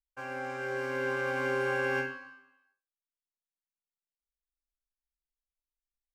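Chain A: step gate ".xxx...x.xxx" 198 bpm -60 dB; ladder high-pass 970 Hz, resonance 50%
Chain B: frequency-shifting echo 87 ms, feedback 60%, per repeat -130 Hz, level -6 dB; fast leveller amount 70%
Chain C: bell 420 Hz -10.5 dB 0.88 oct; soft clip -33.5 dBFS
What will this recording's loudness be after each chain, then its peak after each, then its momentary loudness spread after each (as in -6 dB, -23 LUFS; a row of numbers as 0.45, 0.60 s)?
-42.0, -30.0, -38.0 LUFS; -28.5, -18.0, -33.5 dBFS; 12, 14, 10 LU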